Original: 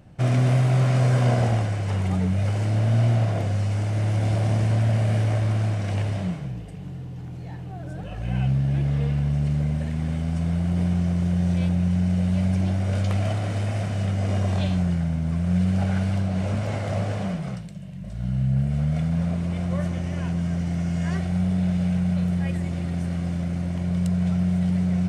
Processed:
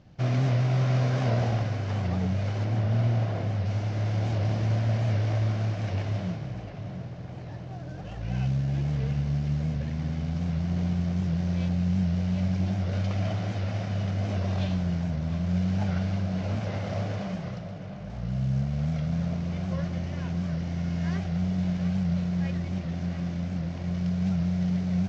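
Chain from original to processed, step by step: CVSD coder 32 kbps; 2.64–3.66 s: treble shelf 4.6 kHz -7 dB; tape echo 701 ms, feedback 77%, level -9.5 dB, low-pass 3 kHz; warped record 78 rpm, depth 100 cents; trim -4.5 dB

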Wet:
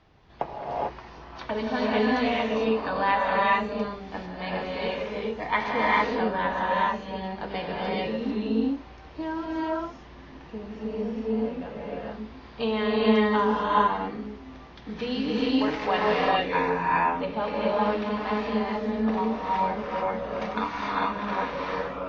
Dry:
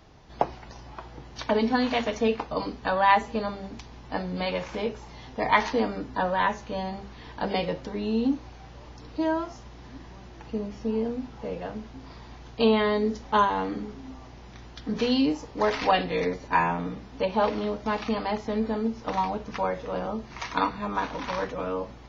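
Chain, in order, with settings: low-pass 2.7 kHz 12 dB/octave; treble shelf 2.1 kHz +9 dB; gated-style reverb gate 470 ms rising, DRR -5.5 dB; trim -7 dB

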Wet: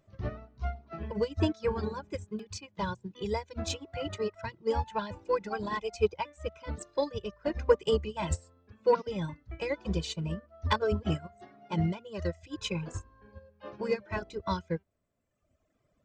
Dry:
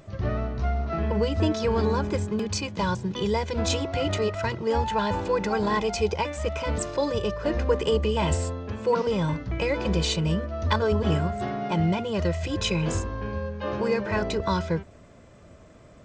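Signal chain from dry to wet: reverb removal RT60 1.8 s; saturation -11.5 dBFS, distortion -30 dB; upward expansion 2.5:1, over -34 dBFS; trim +3 dB

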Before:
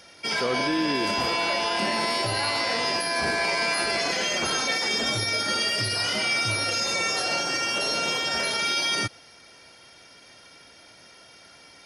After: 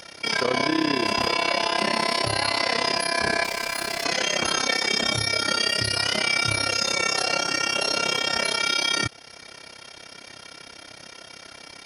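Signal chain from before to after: in parallel at +1.5 dB: compression, threshold -40 dBFS, peak gain reduction 17 dB; 3.44–4.05 s: on the sum: hard clipper -27 dBFS, distortion -17 dB; AM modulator 33 Hz, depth 75%; trim +4 dB

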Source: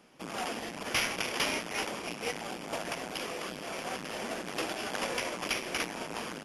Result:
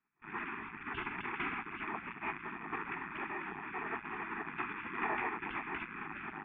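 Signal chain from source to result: cascade formant filter e; gate with hold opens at -46 dBFS; high-order bell 830 Hz +14.5 dB; spectral gate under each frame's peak -25 dB weak; distance through air 200 m; attacks held to a fixed rise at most 500 dB/s; trim +15.5 dB

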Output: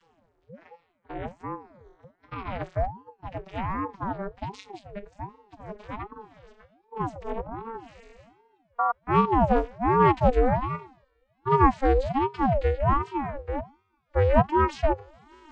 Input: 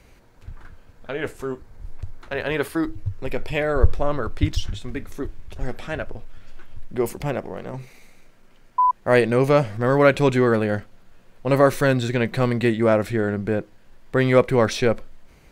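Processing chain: vocoder on a note that slides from E3, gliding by +11 st; reverse; upward compressor, threshold -36 dBFS; reverse; spectral noise reduction 14 dB; ring modulator with a swept carrier 440 Hz, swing 55%, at 1.3 Hz

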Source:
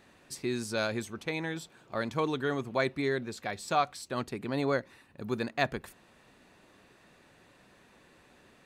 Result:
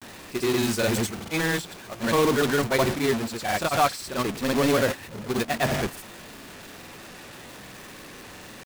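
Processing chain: jump at every zero crossing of -26.5 dBFS; gate -29 dBFS, range -13 dB; granulator; transient shaper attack -3 dB, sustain +2 dB; companded quantiser 4-bit; trim +5.5 dB

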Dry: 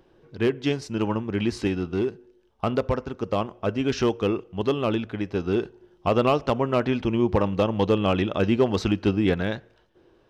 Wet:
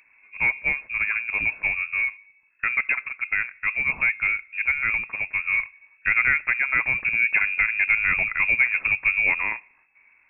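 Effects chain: frequency inversion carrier 2.6 kHz

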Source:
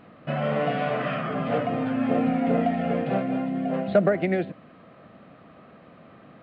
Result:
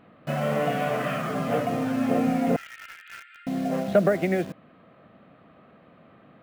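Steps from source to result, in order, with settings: 2.56–3.47 s: Chebyshev high-pass 1.3 kHz, order 10; in parallel at -5 dB: bit crusher 6-bit; on the sum: trim -4 dB

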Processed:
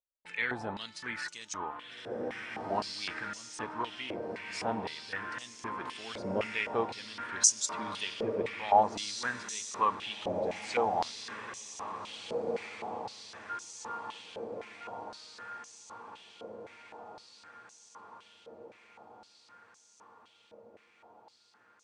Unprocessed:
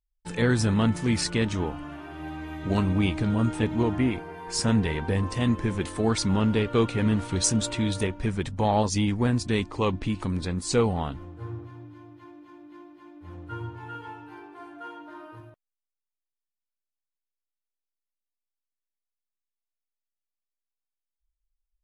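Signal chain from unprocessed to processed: echo that smears into a reverb 1792 ms, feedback 58%, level -6 dB; step-sequenced band-pass 3.9 Hz 550–6300 Hz; trim +5.5 dB

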